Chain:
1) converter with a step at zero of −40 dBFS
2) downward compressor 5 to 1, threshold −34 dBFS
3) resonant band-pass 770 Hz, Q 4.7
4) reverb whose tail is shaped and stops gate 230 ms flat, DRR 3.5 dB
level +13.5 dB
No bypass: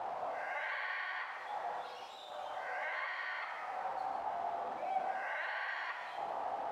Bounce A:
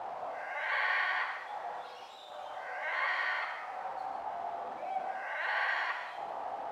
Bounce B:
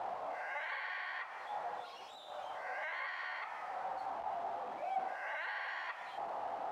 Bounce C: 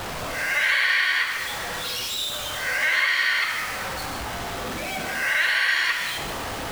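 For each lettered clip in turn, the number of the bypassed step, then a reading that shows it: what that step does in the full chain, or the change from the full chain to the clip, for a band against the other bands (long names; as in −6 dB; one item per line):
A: 2, average gain reduction 2.0 dB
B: 4, change in integrated loudness −1.5 LU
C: 3, 1 kHz band −14.5 dB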